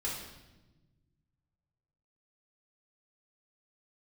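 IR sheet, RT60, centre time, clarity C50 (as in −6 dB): 1.1 s, 55 ms, 2.5 dB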